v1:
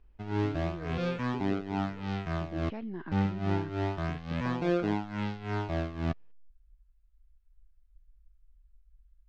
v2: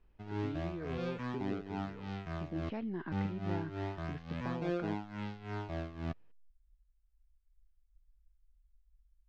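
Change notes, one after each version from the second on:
background -7.5 dB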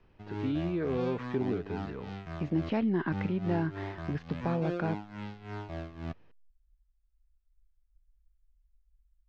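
speech +10.5 dB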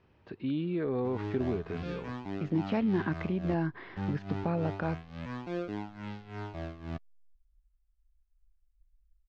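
background: entry +0.85 s

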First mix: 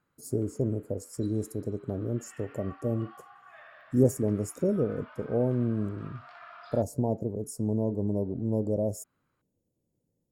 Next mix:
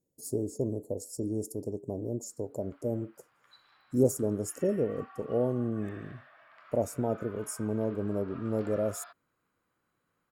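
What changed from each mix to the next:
speech: add tone controls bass -6 dB, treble +3 dB; background: entry +2.30 s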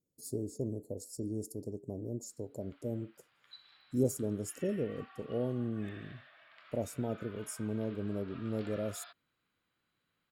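speech -3.5 dB; master: add FFT filter 210 Hz 0 dB, 1.1 kHz -7 dB, 3.7 kHz +8 dB, 5.8 kHz -1 dB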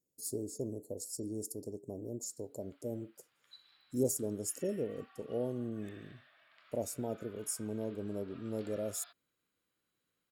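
background -6.0 dB; master: add tone controls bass -6 dB, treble +6 dB

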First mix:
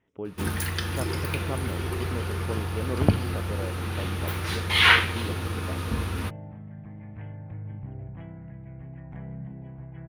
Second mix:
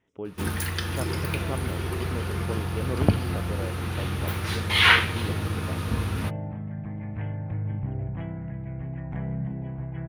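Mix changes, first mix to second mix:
speech: add tone controls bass -1 dB, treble +8 dB; second sound +7.5 dB

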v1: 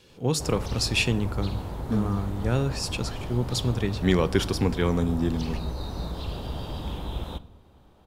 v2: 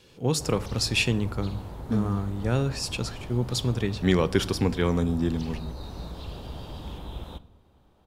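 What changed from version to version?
background -5.0 dB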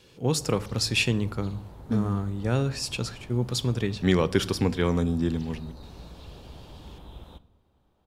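background -7.0 dB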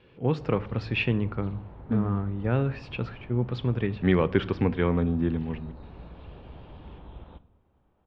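master: add low-pass 2.7 kHz 24 dB/octave

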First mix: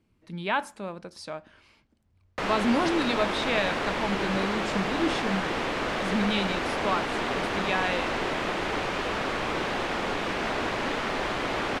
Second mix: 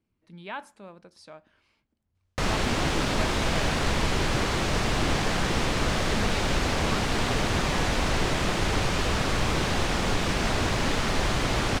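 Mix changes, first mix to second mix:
speech -9.5 dB; background: remove three-band isolator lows -15 dB, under 230 Hz, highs -12 dB, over 3.4 kHz

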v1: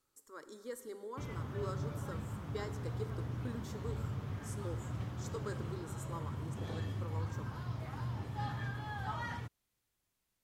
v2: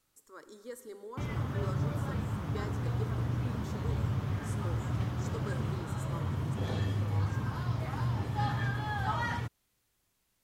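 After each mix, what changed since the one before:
background +7.5 dB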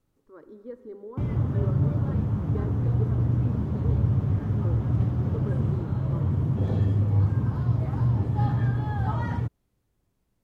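speech: add distance through air 290 m; master: add tilt shelf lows +9.5 dB, about 910 Hz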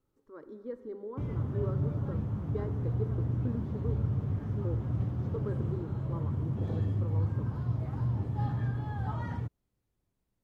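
background -7.5 dB

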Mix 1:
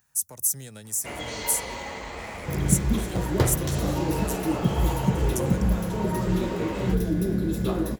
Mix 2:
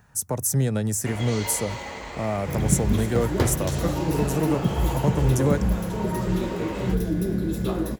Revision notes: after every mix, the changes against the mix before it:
speech: remove pre-emphasis filter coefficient 0.9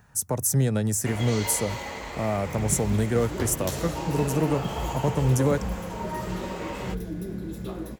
first sound: add peaking EQ 13 kHz +14.5 dB 0.36 oct; second sound -8.5 dB

